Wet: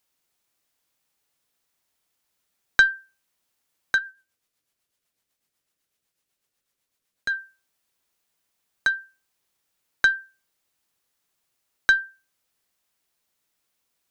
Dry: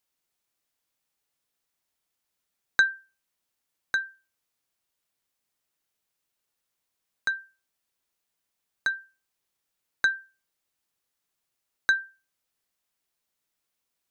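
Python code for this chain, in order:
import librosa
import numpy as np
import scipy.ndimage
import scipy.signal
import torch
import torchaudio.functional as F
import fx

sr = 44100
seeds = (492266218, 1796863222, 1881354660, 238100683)

y = fx.diode_clip(x, sr, knee_db=-8.5)
y = fx.rotary(y, sr, hz=8.0, at=(3.98, 7.34))
y = F.gain(torch.from_numpy(y), 5.5).numpy()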